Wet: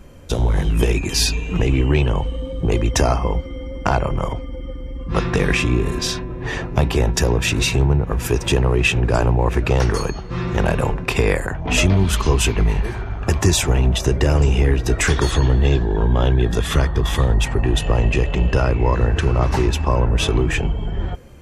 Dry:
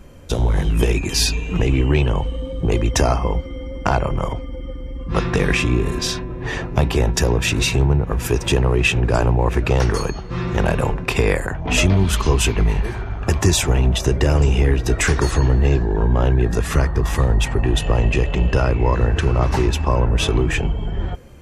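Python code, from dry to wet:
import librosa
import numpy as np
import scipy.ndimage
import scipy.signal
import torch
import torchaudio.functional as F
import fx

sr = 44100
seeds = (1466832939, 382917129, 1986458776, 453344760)

y = fx.peak_eq(x, sr, hz=3400.0, db=14.0, octaves=0.23, at=(15.1, 17.34))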